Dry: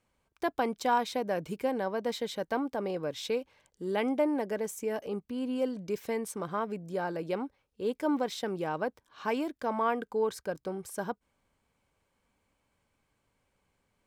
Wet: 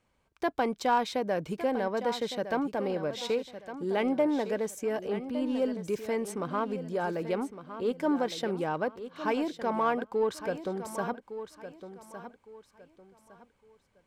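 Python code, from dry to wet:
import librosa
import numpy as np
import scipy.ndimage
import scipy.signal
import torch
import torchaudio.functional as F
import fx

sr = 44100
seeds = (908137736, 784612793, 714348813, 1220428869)

p1 = 10.0 ** (-31.5 / 20.0) * np.tanh(x / 10.0 ** (-31.5 / 20.0))
p2 = x + (p1 * 10.0 ** (-8.0 / 20.0))
p3 = fx.high_shelf(p2, sr, hz=9500.0, db=-9.5)
y = fx.echo_feedback(p3, sr, ms=1160, feedback_pct=28, wet_db=-11.5)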